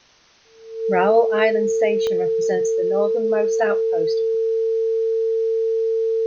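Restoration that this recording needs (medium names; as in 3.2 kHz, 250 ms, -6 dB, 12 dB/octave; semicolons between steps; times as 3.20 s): de-click; band-stop 450 Hz, Q 30; expander -35 dBFS, range -21 dB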